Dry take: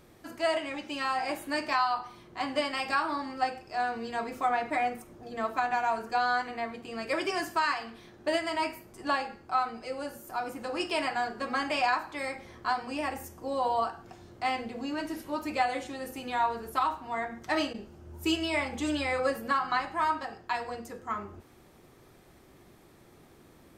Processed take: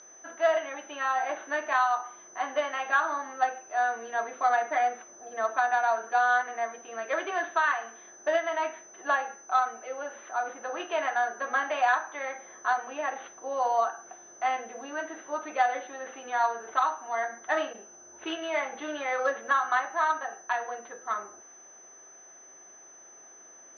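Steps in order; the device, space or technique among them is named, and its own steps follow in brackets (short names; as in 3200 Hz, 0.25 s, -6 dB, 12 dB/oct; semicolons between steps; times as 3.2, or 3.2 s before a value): toy sound module (decimation joined by straight lines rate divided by 4×; pulse-width modulation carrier 6100 Hz; speaker cabinet 610–3900 Hz, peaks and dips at 670 Hz +4 dB, 960 Hz -3 dB, 1600 Hz +5 dB, 2400 Hz -7 dB, 3700 Hz +3 dB); gain +3.5 dB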